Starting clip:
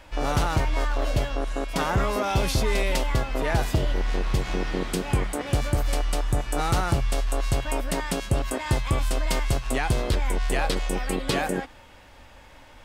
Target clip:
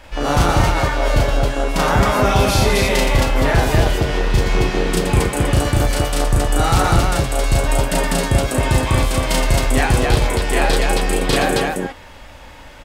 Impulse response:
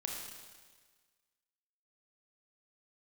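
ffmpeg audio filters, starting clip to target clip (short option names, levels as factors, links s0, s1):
-af "aecho=1:1:34.99|119.5|268.2:1|0.501|0.891,volume=1.78"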